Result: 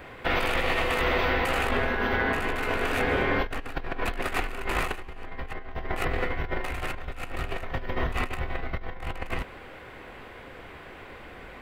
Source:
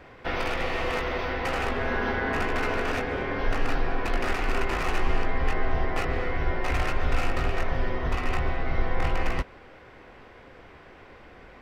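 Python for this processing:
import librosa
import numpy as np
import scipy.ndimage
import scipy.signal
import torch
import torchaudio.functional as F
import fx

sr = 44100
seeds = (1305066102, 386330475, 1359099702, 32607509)

y = fx.high_shelf(x, sr, hz=3200.0, db=11.0)
y = fx.over_compress(y, sr, threshold_db=-27.0, ratio=-0.5)
y = fx.peak_eq(y, sr, hz=5500.0, db=-11.5, octaves=0.69)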